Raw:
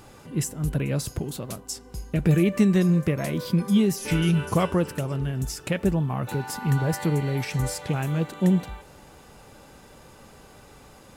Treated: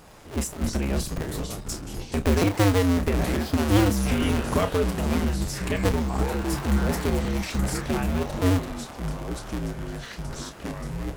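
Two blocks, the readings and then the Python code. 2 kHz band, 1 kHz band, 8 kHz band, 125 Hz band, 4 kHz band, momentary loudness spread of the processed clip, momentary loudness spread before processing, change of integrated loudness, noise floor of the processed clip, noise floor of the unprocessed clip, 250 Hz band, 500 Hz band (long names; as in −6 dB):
+2.5 dB, +3.5 dB, +1.5 dB, −1.5 dB, +3.0 dB, 13 LU, 12 LU, −1.0 dB, −41 dBFS, −50 dBFS, −1.0 dB, +1.5 dB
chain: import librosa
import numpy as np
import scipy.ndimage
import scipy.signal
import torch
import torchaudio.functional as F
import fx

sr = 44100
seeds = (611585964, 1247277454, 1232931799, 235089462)

y = fx.cycle_switch(x, sr, every=2, mode='inverted')
y = fx.echo_pitch(y, sr, ms=112, semitones=-5, count=2, db_per_echo=-6.0)
y = fx.doubler(y, sr, ms=30.0, db=-9.5)
y = F.gain(torch.from_numpy(y), -1.5).numpy()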